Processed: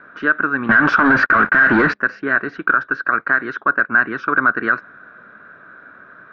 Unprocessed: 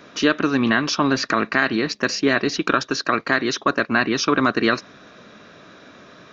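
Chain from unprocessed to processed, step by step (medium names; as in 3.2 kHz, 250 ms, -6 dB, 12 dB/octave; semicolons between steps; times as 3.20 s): 0.69–1.94 s: waveshaping leveller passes 5; resonant low-pass 1.5 kHz, resonance Q 9.3; loudness maximiser -3 dB; trim -3 dB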